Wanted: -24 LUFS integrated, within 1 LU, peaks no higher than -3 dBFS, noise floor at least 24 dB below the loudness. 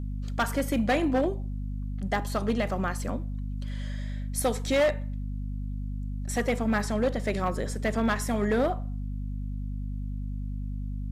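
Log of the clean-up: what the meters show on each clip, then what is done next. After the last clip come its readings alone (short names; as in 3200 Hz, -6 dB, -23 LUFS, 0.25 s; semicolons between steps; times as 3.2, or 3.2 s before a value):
clipped 1.1%; flat tops at -19.0 dBFS; hum 50 Hz; harmonics up to 250 Hz; hum level -30 dBFS; loudness -30.0 LUFS; peak -19.0 dBFS; loudness target -24.0 LUFS
-> clip repair -19 dBFS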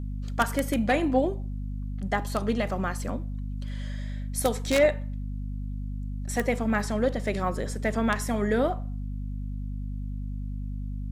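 clipped 0.0%; hum 50 Hz; harmonics up to 250 Hz; hum level -30 dBFS
-> de-hum 50 Hz, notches 5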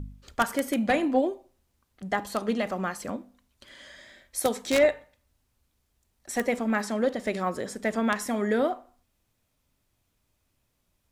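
hum none; loudness -27.5 LUFS; peak -9.0 dBFS; loudness target -24.0 LUFS
-> gain +3.5 dB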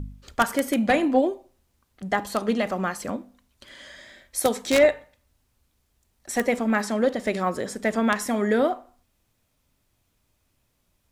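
loudness -24.0 LUFS; peak -5.5 dBFS; noise floor -71 dBFS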